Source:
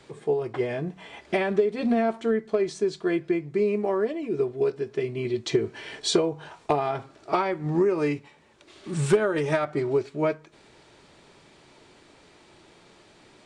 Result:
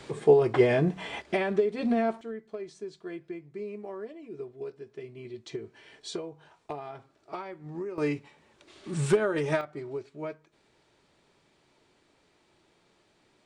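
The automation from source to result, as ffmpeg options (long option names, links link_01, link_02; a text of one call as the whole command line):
ffmpeg -i in.wav -af "asetnsamples=nb_out_samples=441:pad=0,asendcmd='1.22 volume volume -3dB;2.21 volume volume -14dB;7.98 volume volume -3dB;9.61 volume volume -12dB',volume=6dB" out.wav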